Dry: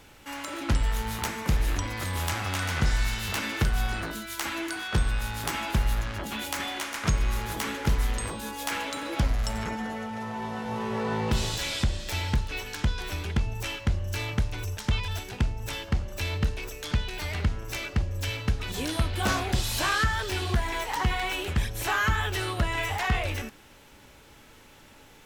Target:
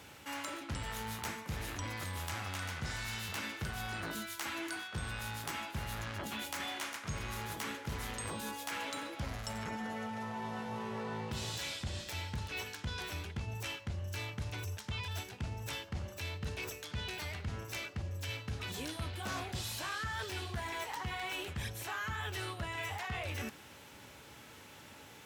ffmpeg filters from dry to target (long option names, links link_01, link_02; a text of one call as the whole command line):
ffmpeg -i in.wav -af "highpass=frequency=75:width=0.5412,highpass=frequency=75:width=1.3066,equalizer=frequency=320:width_type=o:width=1.7:gain=-2,areverse,acompressor=threshold=-37dB:ratio=6,areverse" out.wav